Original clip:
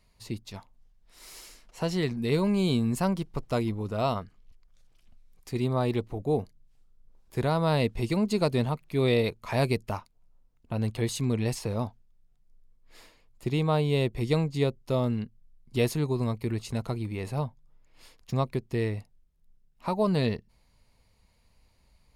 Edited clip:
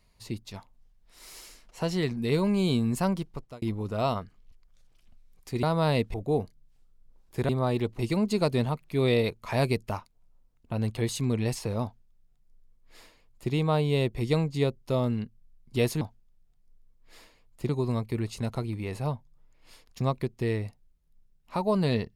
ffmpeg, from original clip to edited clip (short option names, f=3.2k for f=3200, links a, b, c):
-filter_complex "[0:a]asplit=8[a][b][c][d][e][f][g][h];[a]atrim=end=3.62,asetpts=PTS-STARTPTS,afade=t=out:st=3.16:d=0.46[i];[b]atrim=start=3.62:end=5.632,asetpts=PTS-STARTPTS,afade=t=in:d=0.004:c=hsin[j];[c]atrim=start=7.478:end=7.992[k];[d]atrim=start=6.128:end=7.482[l];[e]atrim=start=5.628:end=6.132[m];[f]atrim=start=7.988:end=16.012[n];[g]atrim=start=11.828:end=13.512[o];[h]atrim=start=16.008[p];[i][j]concat=n=2:v=0:a=1[q];[q][k]acrossfade=d=0.004:c1=hsin:c2=hsin[r];[r][l]acrossfade=d=0.004:c1=hsin:c2=hsin[s];[s][m]acrossfade=d=0.004:c1=hsin:c2=hsin[t];[t][n]acrossfade=d=0.004:c1=hsin:c2=hsin[u];[u][o]acrossfade=d=0.004:c1=hsin:c2=hsin[v];[v][p]acrossfade=d=0.004:c1=hsin:c2=hsin"